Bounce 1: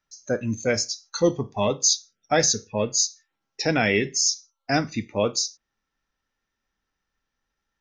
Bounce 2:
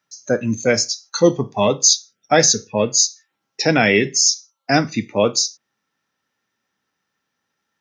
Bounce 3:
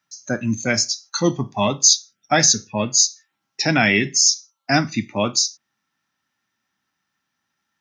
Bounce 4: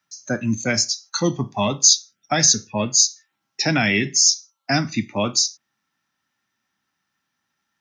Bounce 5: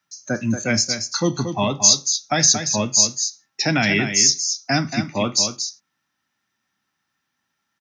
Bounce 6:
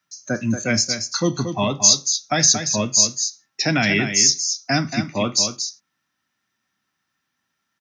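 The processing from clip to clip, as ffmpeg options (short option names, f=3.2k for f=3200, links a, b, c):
-af "highpass=f=110:w=0.5412,highpass=f=110:w=1.3066,volume=6.5dB"
-af "equalizer=f=470:w=2.9:g=-13.5"
-filter_complex "[0:a]acrossover=split=230|3000[a][b][c];[b]acompressor=threshold=-18dB:ratio=6[d];[a][d][c]amix=inputs=3:normalize=0"
-af "aecho=1:1:230:0.398"
-af "bandreject=f=850:w=12"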